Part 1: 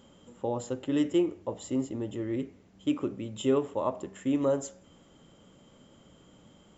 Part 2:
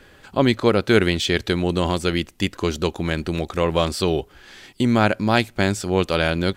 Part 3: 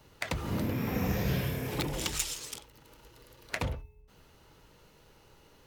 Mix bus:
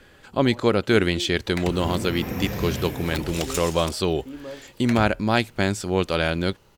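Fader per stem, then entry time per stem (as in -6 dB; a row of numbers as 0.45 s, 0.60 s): -10.5 dB, -2.5 dB, +1.5 dB; 0.00 s, 0.00 s, 1.35 s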